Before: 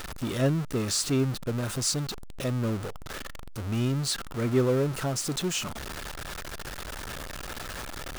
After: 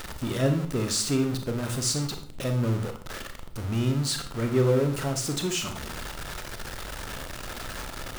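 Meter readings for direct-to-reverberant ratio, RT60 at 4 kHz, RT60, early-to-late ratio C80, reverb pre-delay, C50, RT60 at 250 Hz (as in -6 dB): 6.0 dB, 0.40 s, 0.50 s, 13.5 dB, 28 ms, 9.5 dB, 0.65 s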